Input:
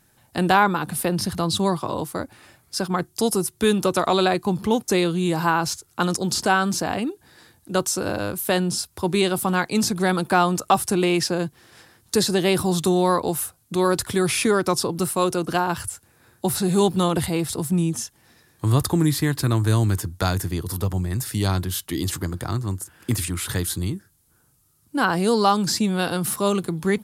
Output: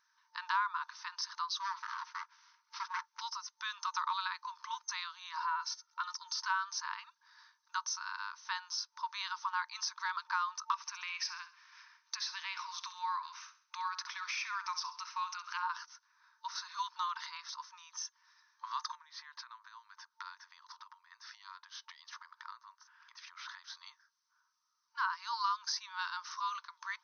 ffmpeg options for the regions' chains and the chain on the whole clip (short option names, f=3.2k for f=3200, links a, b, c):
-filter_complex "[0:a]asettb=1/sr,asplit=3[a][b][c];[a]atrim=end=1.604[d];[b]atrim=start=1.6:end=3.21,asetpts=PTS-STARTPTS,afade=t=in:d=0.004:c=qsin,afade=t=out:st=1.606:d=0.004:c=qsin,aecho=1:1:1.4:0.49,atrim=end_sample=71001,aeval=exprs='abs(val(0))':c=same[e];[c]atrim=start=3.206[f];[d][e]acrossfade=d=0.004:c1=hsin:c2=qsin[g];[g][f]acrossfade=d=0.004:c1=qsin:c2=hsin,asettb=1/sr,asplit=3[h][i][j];[h]atrim=end=5.384[k];[i]atrim=start=5.38:end=6.4,asetpts=PTS-STARTPTS,afade=t=in:d=0.004:c=qsin,afade=t=out:st=1.016:d=0.004:c=qsin,acompressor=threshold=-29dB:ratio=1.5:attack=3.2:release=140:knee=1:detection=peak,aecho=1:1:2.2:0.53,atrim=end_sample=44982[l];[j]atrim=start=6.396[m];[k][l]acrossfade=d=0.004:c1=hsin:c2=qsin[n];[n][m]acrossfade=d=0.004:c1=qsin:c2=hsin,asettb=1/sr,asplit=3[o][p][q];[o]atrim=end=10.744[r];[p]atrim=start=10.74:end=15.63,asetpts=PTS-STARTPTS,afade=t=in:d=0.004:c=qsin,afade=t=out:st=4.886:d=0.004:c=qsin,equalizer=f=2.4k:w=3.1:g=10,acompressor=threshold=-23dB:ratio=2:attack=3.2:release=140:knee=1:detection=peak,aecho=1:1:66|132|198|264:0.211|0.0867|0.0355|0.0146,atrim=end_sample=215649[s];[q]atrim=start=15.626[t];[r][s]acrossfade=d=0.004:c1=hsin:c2=qsin[u];[u][t]acrossfade=d=0.004:c1=qsin:c2=hsin,asettb=1/sr,asplit=3[v][w][x];[v]atrim=end=18.954[y];[w]atrim=start=18.95:end=23.75,asetpts=PTS-STARTPTS,afade=t=in:d=0.004:c=qsin,afade=t=out:st=4.796:d=0.004:c=qsin,lowpass=4.6k,acompressor=threshold=-30dB:ratio=8:attack=3.2:release=140:knee=1:detection=peak[z];[x]atrim=start=23.746[aa];[y][z]acrossfade=d=0.004:c1=hsin:c2=qsin[ab];[ab][aa]acrossfade=d=0.004:c1=qsin:c2=hsin,afftfilt=real='re*between(b*sr/4096,900,6300)':imag='im*between(b*sr/4096,900,6300)':win_size=4096:overlap=0.75,equalizer=f=2.8k:w=0.75:g=-15,acompressor=threshold=-34dB:ratio=2"